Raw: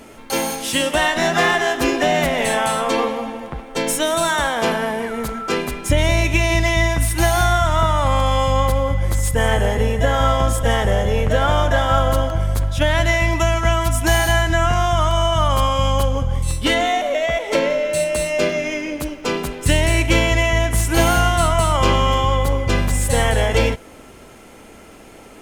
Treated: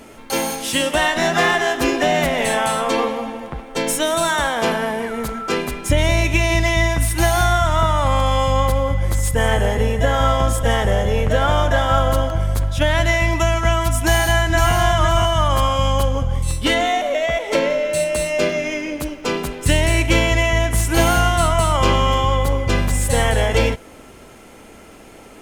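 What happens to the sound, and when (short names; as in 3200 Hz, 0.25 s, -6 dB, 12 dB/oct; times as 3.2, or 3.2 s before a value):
14.02–14.74 echo throw 0.51 s, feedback 25%, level -4.5 dB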